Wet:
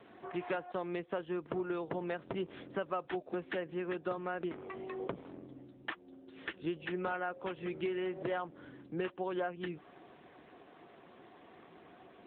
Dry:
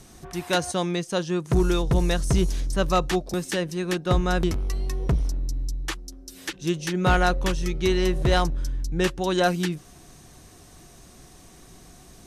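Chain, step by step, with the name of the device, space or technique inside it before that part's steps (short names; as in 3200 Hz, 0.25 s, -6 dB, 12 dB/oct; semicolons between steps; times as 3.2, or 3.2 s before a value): 3.56–4.34 HPF 78 Hz 12 dB/oct; voicemail (BPF 330–2600 Hz; compressor 6:1, threshold -33 dBFS, peak gain reduction 15.5 dB; AMR-NB 7.95 kbps 8000 Hz)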